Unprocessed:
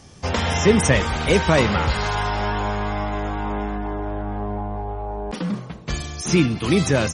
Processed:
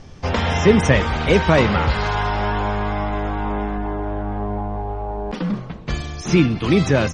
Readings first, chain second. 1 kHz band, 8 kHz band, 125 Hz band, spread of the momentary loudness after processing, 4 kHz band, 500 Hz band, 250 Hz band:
+2.0 dB, −6.5 dB, +2.5 dB, 12 LU, −0.5 dB, +2.0 dB, +2.5 dB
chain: background noise brown −45 dBFS
high-frequency loss of the air 120 metres
level +2.5 dB

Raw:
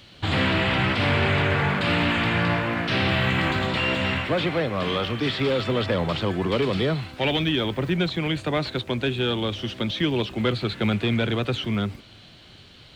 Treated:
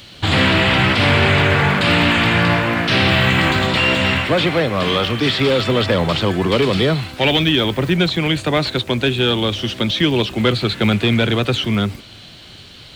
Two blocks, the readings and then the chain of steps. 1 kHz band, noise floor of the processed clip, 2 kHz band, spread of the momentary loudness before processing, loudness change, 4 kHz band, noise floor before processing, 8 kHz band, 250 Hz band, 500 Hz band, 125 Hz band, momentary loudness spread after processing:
+7.5 dB, −40 dBFS, +8.0 dB, 5 LU, +8.0 dB, +9.5 dB, −49 dBFS, can't be measured, +7.0 dB, +7.0 dB, +7.0 dB, 5 LU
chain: high-shelf EQ 4,600 Hz +7.5 dB
level +7 dB

